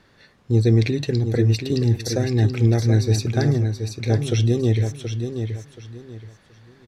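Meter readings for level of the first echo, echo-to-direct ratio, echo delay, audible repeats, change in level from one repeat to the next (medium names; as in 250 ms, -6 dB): -7.5 dB, -7.0 dB, 727 ms, 3, -11.5 dB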